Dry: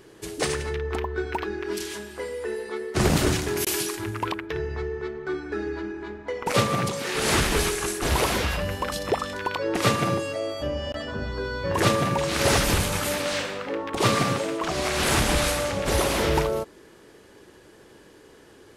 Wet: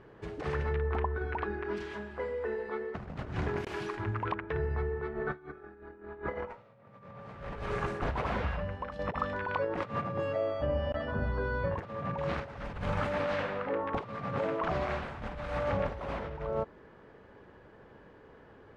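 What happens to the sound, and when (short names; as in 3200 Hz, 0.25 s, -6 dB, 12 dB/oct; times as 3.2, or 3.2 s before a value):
5.11–7 reverb throw, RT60 2.2 s, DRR -11 dB
7.53–8.99 fade out, to -10.5 dB
whole clip: negative-ratio compressor -27 dBFS, ratio -0.5; LPF 1500 Hz 12 dB/oct; bell 340 Hz -9 dB 0.67 oct; gain -4 dB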